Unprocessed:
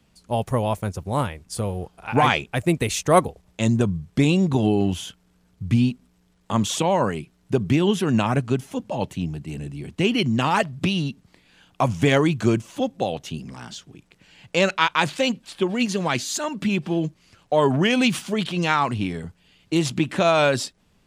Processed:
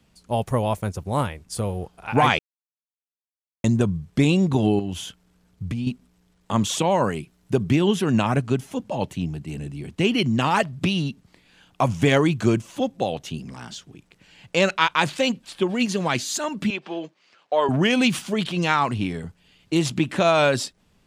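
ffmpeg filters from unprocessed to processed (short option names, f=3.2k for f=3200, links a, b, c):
-filter_complex "[0:a]asettb=1/sr,asplit=3[a][b][c];[a]atrim=end=4.794[d];[b]atrim=start=4.79:end=5.87,asetpts=PTS-STARTPTS,afade=t=in:d=0.004:c=qsin,afade=t=out:st=1.076:d=0.004:c=qsin,acompressor=threshold=-24dB:ratio=6:attack=3.2:release=140:knee=1:detection=peak[e];[c]atrim=start=5.866[f];[d][e]acrossfade=d=0.004:c1=hsin:c2=qsin[g];[g][f]acrossfade=d=0.004:c1=qsin:c2=hsin,asettb=1/sr,asplit=3[h][i][j];[h]atrim=end=6.914[k];[i]atrim=start=6.91:end=7.65,asetpts=PTS-STARTPTS,afade=t=in:d=0.004:c=qsin,afade=t=out:st=0.736:d=0.004:c=qsin,highshelf=f=9.4k:g=6[l];[j]atrim=start=7.646[m];[k][l]acrossfade=d=0.004:c1=hsin:c2=qsin[n];[n][m]acrossfade=d=0.004:c1=qsin:c2=hsin,asettb=1/sr,asplit=3[o][p][q];[o]atrim=end=16.704[r];[p]atrim=start=16.7:end=17.69,asetpts=PTS-STARTPTS,afade=t=in:d=0.004:c=qsin,afade=t=out:st=0.986:d=0.004:c=qsin,highpass=490,lowpass=4.5k[s];[q]atrim=start=17.686[t];[r][s]acrossfade=d=0.004:c1=hsin:c2=qsin[u];[u][t]acrossfade=d=0.004:c1=qsin:c2=hsin,asplit=3[v][w][x];[v]atrim=end=2.39,asetpts=PTS-STARTPTS,afade=t=out:st=2.386:d=0.004:c=hsin[y];[w]atrim=start=2.39:end=3.64,asetpts=PTS-STARTPTS,volume=0[z];[x]atrim=start=3.64,asetpts=PTS-STARTPTS,afade=t=in:d=0.004:c=hsin[aa];[y][z][aa]concat=n=3:v=0:a=1"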